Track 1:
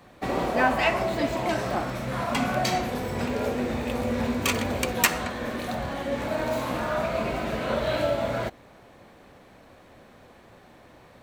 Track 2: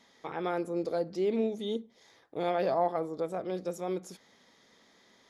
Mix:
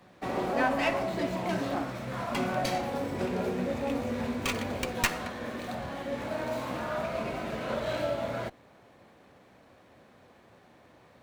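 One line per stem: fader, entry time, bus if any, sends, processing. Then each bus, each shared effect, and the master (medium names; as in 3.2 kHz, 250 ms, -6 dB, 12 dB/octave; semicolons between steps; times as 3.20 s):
-5.5 dB, 0.00 s, no send, high-pass 72 Hz
+0.5 dB, 0.00 s, no send, vocoder on a broken chord bare fifth, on F#3, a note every 522 ms; compressor with a negative ratio -35 dBFS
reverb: none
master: sliding maximum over 3 samples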